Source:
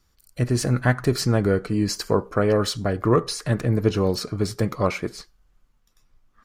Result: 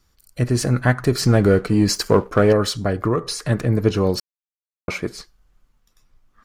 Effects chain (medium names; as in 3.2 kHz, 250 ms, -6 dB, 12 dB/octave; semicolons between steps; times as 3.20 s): 1.23–2.53 s: waveshaping leveller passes 1; 3.04–3.45 s: compression, threshold -18 dBFS, peak gain reduction 6 dB; 4.20–4.88 s: mute; trim +2.5 dB